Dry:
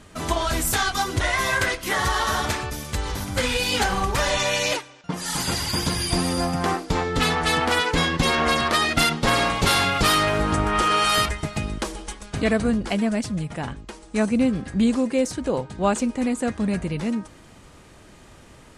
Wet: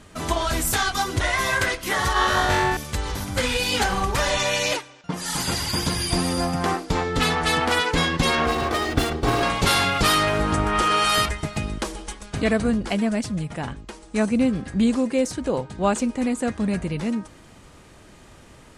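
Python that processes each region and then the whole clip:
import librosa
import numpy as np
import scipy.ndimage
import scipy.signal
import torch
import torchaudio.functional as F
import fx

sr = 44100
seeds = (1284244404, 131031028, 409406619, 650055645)

y = fx.chain(x, sr, fx.high_shelf(hz=5800.0, db=-10.5),
    fx.notch(hz=5200.0, q=30.0),
    fx.room_flutter(wall_m=3.7, rt60_s=0.8), at=(2.13, 2.77))
y = fx.chain(y, sr, fx.lower_of_two(delay_ms=2.6),
    fx.highpass(hz=40.0, slope=12),
    fx.tilt_shelf(db=6.5, hz=920.0), at=(8.46, 9.43))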